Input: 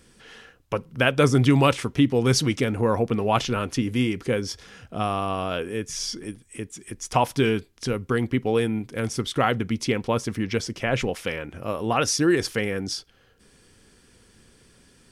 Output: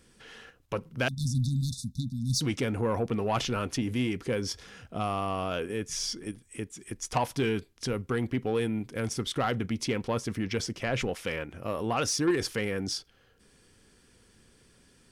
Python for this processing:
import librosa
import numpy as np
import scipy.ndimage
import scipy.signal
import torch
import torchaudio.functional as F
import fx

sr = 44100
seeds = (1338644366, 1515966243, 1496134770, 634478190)

p1 = fx.level_steps(x, sr, step_db=17)
p2 = x + F.gain(torch.from_numpy(p1), 1.0).numpy()
p3 = 10.0 ** (-11.5 / 20.0) * np.tanh(p2 / 10.0 ** (-11.5 / 20.0))
p4 = fx.brickwall_bandstop(p3, sr, low_hz=260.0, high_hz=3500.0, at=(1.08, 2.41))
y = F.gain(torch.from_numpy(p4), -7.0).numpy()